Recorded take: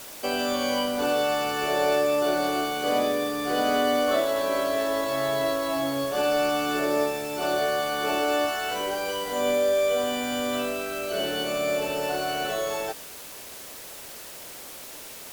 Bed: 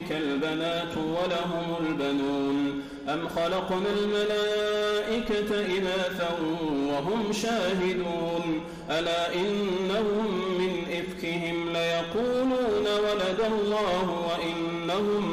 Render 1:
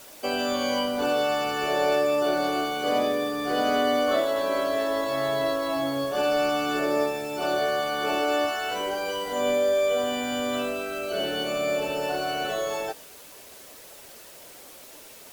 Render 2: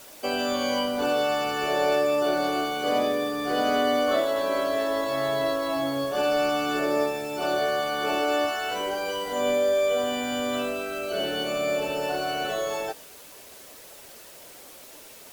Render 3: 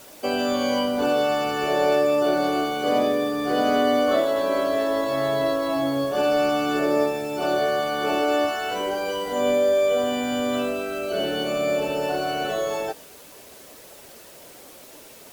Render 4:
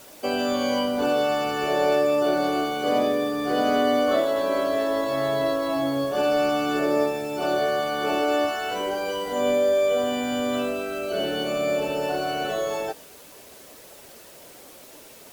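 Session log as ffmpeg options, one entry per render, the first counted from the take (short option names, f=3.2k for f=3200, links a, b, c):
-af "afftdn=nr=6:nf=-41"
-af anull
-af "equalizer=f=200:w=0.3:g=5"
-af "volume=-1dB"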